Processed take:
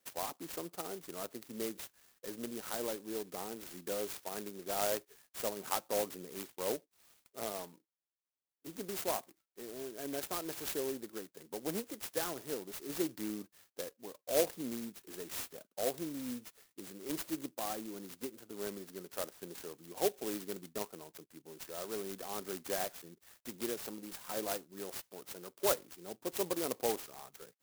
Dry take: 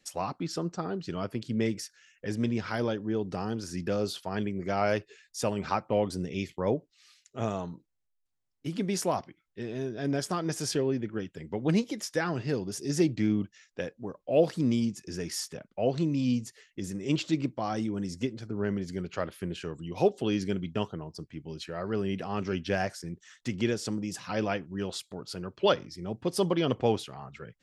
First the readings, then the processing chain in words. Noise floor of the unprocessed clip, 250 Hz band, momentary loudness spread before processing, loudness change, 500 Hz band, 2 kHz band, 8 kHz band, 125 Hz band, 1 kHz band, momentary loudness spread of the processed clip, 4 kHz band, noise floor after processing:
-77 dBFS, -13.5 dB, 12 LU, -8.0 dB, -8.0 dB, -9.0 dB, -1.0 dB, -21.5 dB, -7.5 dB, 13 LU, -6.5 dB, under -85 dBFS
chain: HPF 390 Hz 12 dB/oct; clock jitter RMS 0.13 ms; gain -5.5 dB

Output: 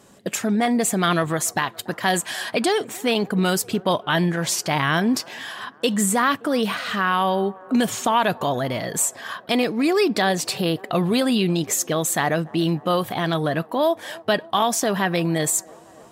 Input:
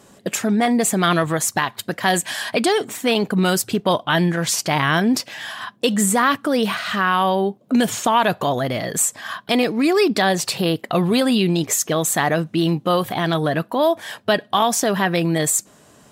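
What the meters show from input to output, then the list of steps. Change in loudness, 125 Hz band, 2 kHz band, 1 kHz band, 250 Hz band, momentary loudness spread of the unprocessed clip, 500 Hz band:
-2.5 dB, -2.5 dB, -2.5 dB, -2.5 dB, -2.5 dB, 5 LU, -2.5 dB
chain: band-limited delay 0.286 s, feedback 71%, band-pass 680 Hz, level -22 dB; gain -2.5 dB

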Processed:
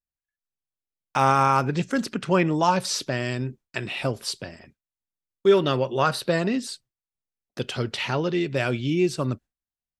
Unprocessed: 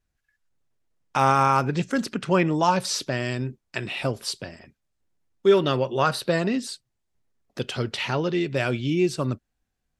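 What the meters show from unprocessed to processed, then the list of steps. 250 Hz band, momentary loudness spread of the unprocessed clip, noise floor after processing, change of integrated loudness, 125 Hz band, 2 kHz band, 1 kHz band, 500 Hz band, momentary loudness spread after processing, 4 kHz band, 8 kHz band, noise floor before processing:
0.0 dB, 13 LU, under -85 dBFS, 0.0 dB, 0.0 dB, 0.0 dB, 0.0 dB, 0.0 dB, 13 LU, 0.0 dB, 0.0 dB, -78 dBFS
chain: gate with hold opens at -40 dBFS

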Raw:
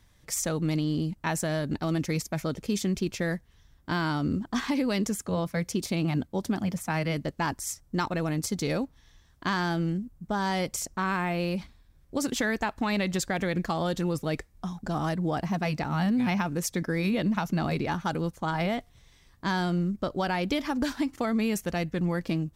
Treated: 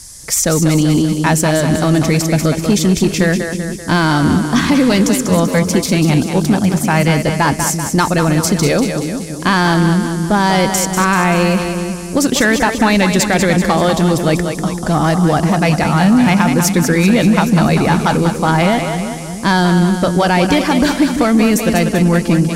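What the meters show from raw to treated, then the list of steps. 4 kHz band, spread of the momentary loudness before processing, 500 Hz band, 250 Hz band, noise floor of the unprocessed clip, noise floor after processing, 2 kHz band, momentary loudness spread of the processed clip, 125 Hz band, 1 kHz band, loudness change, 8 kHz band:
+16.0 dB, 5 LU, +16.0 dB, +16.0 dB, -60 dBFS, -24 dBFS, +16.0 dB, 5 LU, +16.0 dB, +16.0 dB, +16.0 dB, +17.0 dB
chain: split-band echo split 360 Hz, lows 0.34 s, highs 0.193 s, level -7 dB; band noise 4800–11000 Hz -52 dBFS; sine folder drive 4 dB, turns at -12.5 dBFS; gain +8 dB

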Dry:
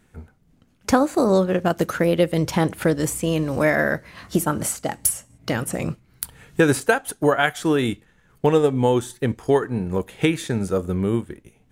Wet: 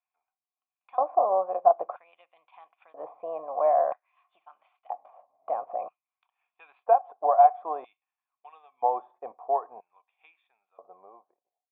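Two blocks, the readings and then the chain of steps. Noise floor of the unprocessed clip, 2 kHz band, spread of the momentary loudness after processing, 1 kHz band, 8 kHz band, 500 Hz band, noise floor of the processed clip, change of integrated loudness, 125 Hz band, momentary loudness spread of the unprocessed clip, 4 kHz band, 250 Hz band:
-60 dBFS, under -25 dB, 20 LU, +2.5 dB, under -40 dB, -7.5 dB, under -85 dBFS, -4.5 dB, under -40 dB, 10 LU, under -35 dB, under -30 dB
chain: ending faded out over 2.55 s; LFO high-pass square 0.51 Hz 580–2900 Hz; vocal tract filter a; gain +4 dB

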